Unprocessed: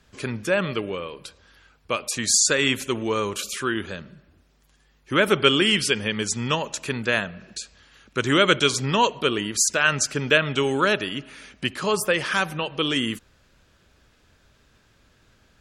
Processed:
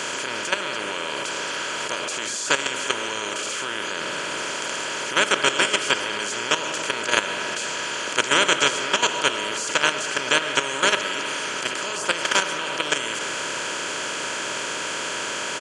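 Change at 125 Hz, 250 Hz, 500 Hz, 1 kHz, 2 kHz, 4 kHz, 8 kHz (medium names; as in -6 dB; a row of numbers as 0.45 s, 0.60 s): -12.5 dB, -7.5 dB, -3.0 dB, +2.5 dB, +2.5 dB, +2.5 dB, 0.0 dB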